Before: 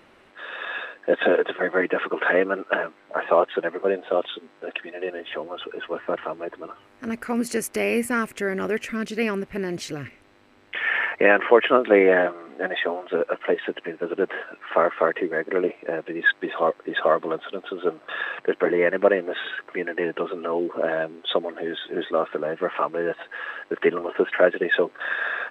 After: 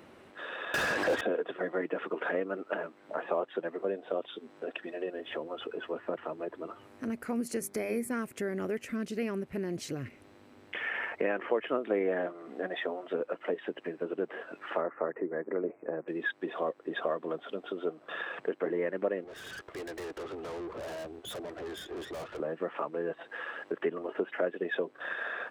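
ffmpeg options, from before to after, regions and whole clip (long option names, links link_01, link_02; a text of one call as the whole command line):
ffmpeg -i in.wav -filter_complex "[0:a]asettb=1/sr,asplit=3[link_01][link_02][link_03];[link_01]atrim=end=0.744[link_04];[link_02]atrim=start=0.74:end=1.21,asetpts=PTS-STARTPTS,afade=type=in:duration=0.004:curve=qsin,afade=type=out:start_time=0.466:duration=0.004:curve=qsin,highshelf=frequency=6800:gain=8.5,acompressor=mode=upward:threshold=-25dB:ratio=2.5:attack=3.2:release=140:knee=2.83:detection=peak,asplit=2[link_05][link_06];[link_06]highpass=frequency=720:poles=1,volume=37dB,asoftclip=type=tanh:threshold=-6.5dB[link_07];[link_05][link_07]amix=inputs=2:normalize=0,lowpass=frequency=2400:poles=1,volume=-6dB[link_08];[link_03]atrim=start=1.206[link_09];[link_04][link_08]acrossfade=duration=0.004:curve1=hsin:curve2=qsin[link_10];[link_10][link_09]acrossfade=duration=0.004:curve1=qsin:curve2=hsin,asettb=1/sr,asplit=3[link_11][link_12][link_13];[link_11]atrim=end=7.594[link_14];[link_12]atrim=start=7.59:end=8.11,asetpts=PTS-STARTPTS,afade=type=in:duration=0.004:curve=qsin,afade=type=out:start_time=0.516:duration=0.004:curve=qsin,asuperstop=centerf=2800:order=4:qfactor=5.3,bandreject=frequency=50:width_type=h:width=6,bandreject=frequency=100:width_type=h:width=6,bandreject=frequency=150:width_type=h:width=6,bandreject=frequency=200:width_type=h:width=6,bandreject=frequency=250:width_type=h:width=6,bandreject=frequency=300:width_type=h:width=6,bandreject=frequency=350:width_type=h:width=6,bandreject=frequency=400:width_type=h:width=6[link_15];[link_13]atrim=start=8.106[link_16];[link_14][link_15]acrossfade=duration=0.004:curve1=hsin:curve2=qsin[link_17];[link_17][link_16]acrossfade=duration=0.004:curve1=qsin:curve2=hsin,asettb=1/sr,asplit=3[link_18][link_19][link_20];[link_18]atrim=end=14.814[link_21];[link_19]atrim=start=14.81:end=16.08,asetpts=PTS-STARTPTS,afade=type=in:duration=0.004:curve=qsin,afade=type=out:start_time=1.266:duration=0.004:curve=qsin,asuperstop=centerf=3700:order=4:qfactor=0.74,highshelf=frequency=4600:gain=-9.5[link_22];[link_20]atrim=start=16.076[link_23];[link_21][link_22]acrossfade=duration=0.004:curve1=hsin:curve2=qsin[link_24];[link_24][link_23]acrossfade=duration=0.004:curve1=qsin:curve2=hsin,asettb=1/sr,asplit=3[link_25][link_26][link_27];[link_25]atrim=end=19.244[link_28];[link_26]atrim=start=19.24:end=22.4,asetpts=PTS-STARTPTS,afade=type=in:duration=0.004:curve=qsin,afade=type=out:start_time=3.156:duration=0.004:curve=qsin,highpass=frequency=300:width=0.5412,highpass=frequency=300:width=1.3066,aeval=exprs='(tanh(63.1*val(0)+0.65)-tanh(0.65))/63.1':channel_layout=same[link_29];[link_27]atrim=start=22.396[link_30];[link_28][link_29]acrossfade=duration=0.004:curve1=hsin:curve2=qsin[link_31];[link_31][link_30]acrossfade=duration=0.004:curve1=qsin:curve2=hsin,highpass=71,equalizer=frequency=2300:width=0.36:gain=-7.5,acompressor=threshold=-41dB:ratio=2,volume=3dB" out.wav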